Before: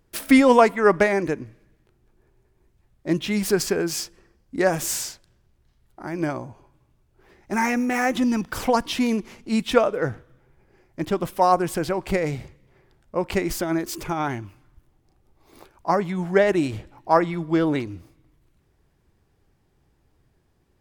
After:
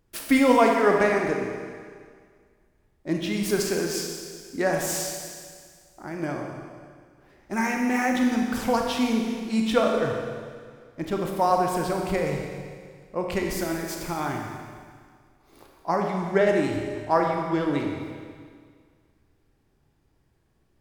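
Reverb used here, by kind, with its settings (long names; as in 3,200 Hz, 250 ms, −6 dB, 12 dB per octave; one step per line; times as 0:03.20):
four-comb reverb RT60 1.9 s, combs from 28 ms, DRR 1 dB
level −4.5 dB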